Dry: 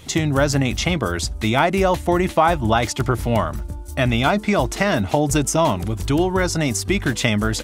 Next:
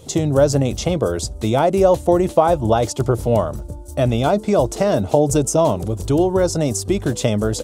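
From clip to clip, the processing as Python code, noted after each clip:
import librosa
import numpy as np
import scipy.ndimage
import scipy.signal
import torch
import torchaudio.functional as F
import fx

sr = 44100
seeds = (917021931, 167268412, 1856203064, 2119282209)

y = fx.graphic_eq(x, sr, hz=(125, 500, 2000, 8000), db=(5, 12, -10, 5))
y = y * librosa.db_to_amplitude(-3.5)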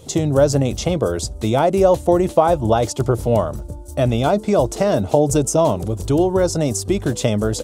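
y = x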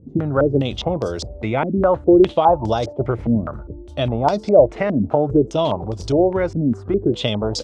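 y = fx.filter_held_lowpass(x, sr, hz=4.9, low_hz=250.0, high_hz=5100.0)
y = y * librosa.db_to_amplitude(-4.0)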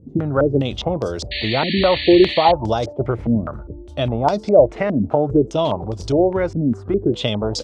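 y = fx.spec_paint(x, sr, seeds[0], shape='noise', start_s=1.31, length_s=1.21, low_hz=1700.0, high_hz=4600.0, level_db=-26.0)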